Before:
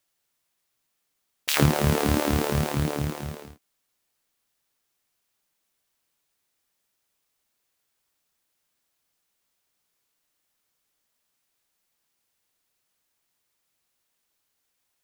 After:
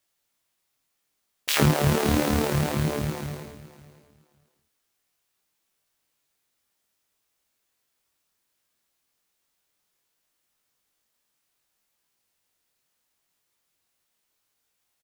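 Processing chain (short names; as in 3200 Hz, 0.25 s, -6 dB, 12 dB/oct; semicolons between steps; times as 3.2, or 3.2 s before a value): chorus 0.67 Hz, delay 18.5 ms, depth 4.8 ms; feedback echo 0.558 s, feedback 18%, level -17.5 dB; gain +3.5 dB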